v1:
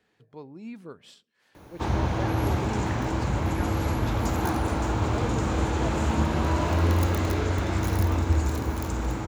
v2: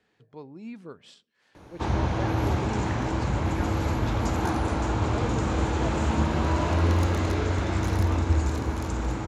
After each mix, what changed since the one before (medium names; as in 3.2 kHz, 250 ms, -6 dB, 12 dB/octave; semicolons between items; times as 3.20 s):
master: add low-pass 8.5 kHz 12 dB/octave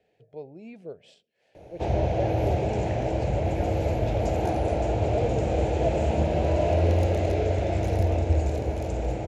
master: add FFT filter 150 Hz 0 dB, 260 Hz -6 dB, 470 Hz +6 dB, 670 Hz +10 dB, 1.1 kHz -17 dB, 2.5 kHz 0 dB, 3.6 kHz -6 dB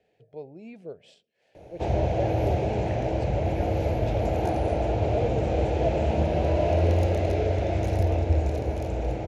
second sound -9.5 dB